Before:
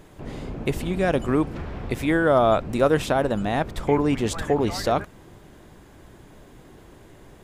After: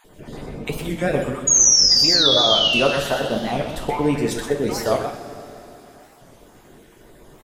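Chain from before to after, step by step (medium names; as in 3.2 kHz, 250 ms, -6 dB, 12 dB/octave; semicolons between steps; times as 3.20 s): random holes in the spectrogram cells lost 28%; tilt EQ -3 dB/octave; 1.25–2.66 s: compression 2.5:1, threshold -18 dBFS, peak gain reduction 5 dB; 1.47–2.81 s: painted sound fall 2.6–6.8 kHz -26 dBFS; RIAA curve recording; delay 124 ms -8 dB; two-slope reverb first 0.33 s, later 3.5 s, from -17 dB, DRR 1.5 dB; warped record 45 rpm, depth 160 cents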